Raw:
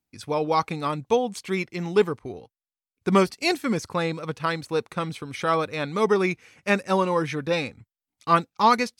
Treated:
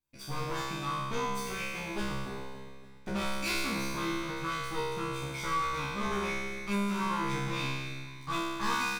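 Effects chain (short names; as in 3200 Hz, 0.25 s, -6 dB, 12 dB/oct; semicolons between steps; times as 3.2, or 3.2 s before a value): minimum comb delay 0.85 ms; dynamic EQ 730 Hz, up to -6 dB, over -38 dBFS, Q 1.5; in parallel at 0 dB: compressor, threshold -31 dBFS, peak gain reduction 15 dB; on the sum: wavefolder -15 dBFS; resonator 67 Hz, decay 1.5 s, harmonics all, mix 100%; soft clip -31.5 dBFS, distortion -19 dB; doubler 13 ms -6 dB; on a send: feedback echo 0.284 s, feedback 50%, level -14 dB; on the sum: gain +8.5 dB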